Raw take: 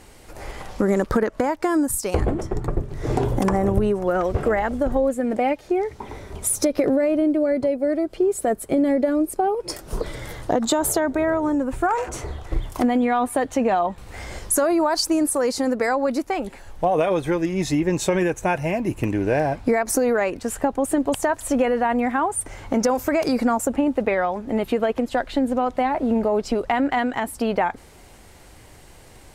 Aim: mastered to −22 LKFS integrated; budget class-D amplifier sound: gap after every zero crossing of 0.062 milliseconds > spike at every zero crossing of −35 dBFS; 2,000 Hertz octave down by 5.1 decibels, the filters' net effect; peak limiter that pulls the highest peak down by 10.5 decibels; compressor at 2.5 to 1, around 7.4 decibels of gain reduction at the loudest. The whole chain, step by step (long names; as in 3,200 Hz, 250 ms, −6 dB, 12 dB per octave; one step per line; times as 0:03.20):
parametric band 2,000 Hz −6.5 dB
downward compressor 2.5 to 1, threshold −28 dBFS
brickwall limiter −24.5 dBFS
gap after every zero crossing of 0.062 ms
spike at every zero crossing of −35 dBFS
level +11.5 dB